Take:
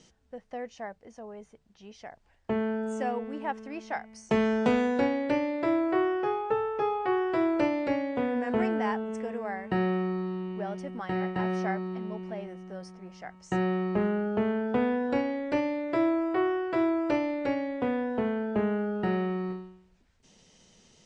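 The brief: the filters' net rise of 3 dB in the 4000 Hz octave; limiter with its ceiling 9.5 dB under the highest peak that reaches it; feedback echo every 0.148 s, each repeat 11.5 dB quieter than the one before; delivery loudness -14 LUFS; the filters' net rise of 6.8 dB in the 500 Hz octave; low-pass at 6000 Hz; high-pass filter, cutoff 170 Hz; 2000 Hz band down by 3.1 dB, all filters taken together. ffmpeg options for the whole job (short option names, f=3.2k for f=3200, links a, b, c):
-af "highpass=170,lowpass=6k,equalizer=f=500:t=o:g=9,equalizer=f=2k:t=o:g=-6,equalizer=f=4k:t=o:g=7.5,alimiter=limit=-17.5dB:level=0:latency=1,aecho=1:1:148|296|444:0.266|0.0718|0.0194,volume=12dB"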